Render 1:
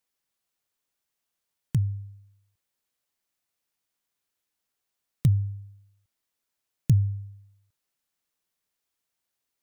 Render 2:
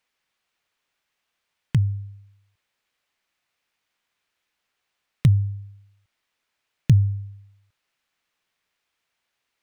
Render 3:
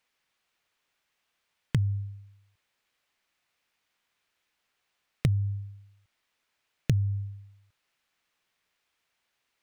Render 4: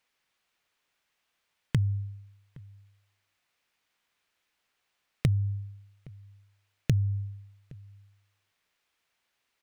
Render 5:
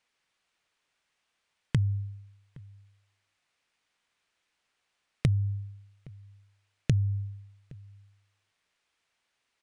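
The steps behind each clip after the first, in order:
drawn EQ curve 300 Hz 0 dB, 2,400 Hz +8 dB, 12,000 Hz −9 dB; level +4.5 dB
downward compressor 6 to 1, threshold −22 dBFS, peak gain reduction 10.5 dB
slap from a distant wall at 140 metres, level −23 dB
downsampling to 22,050 Hz

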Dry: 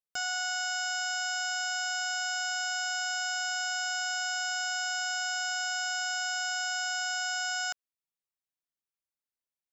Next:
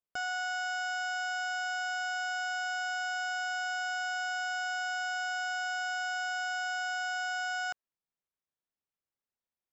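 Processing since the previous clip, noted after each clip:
low-pass filter 1,300 Hz 6 dB per octave
level +3 dB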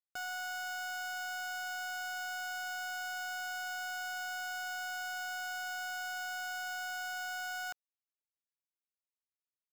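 log-companded quantiser 4 bits
level −6 dB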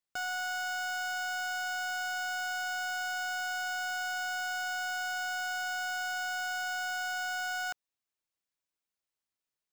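parametric band 13,000 Hz −6.5 dB 0.5 octaves
level +5 dB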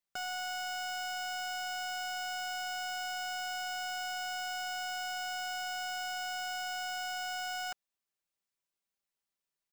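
comb filter 5.1 ms, depth 46%
level −1.5 dB

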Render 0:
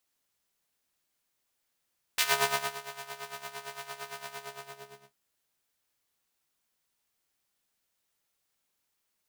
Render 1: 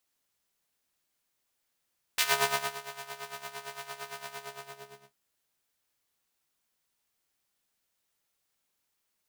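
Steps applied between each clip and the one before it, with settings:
no processing that can be heard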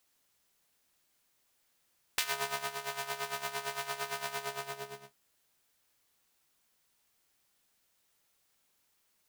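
downward compressor 8 to 1, threshold −35 dBFS, peak gain reduction 15 dB
level +5.5 dB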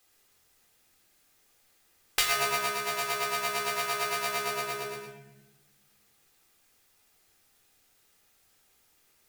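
convolution reverb, pre-delay 3 ms, DRR 0 dB
level +4 dB

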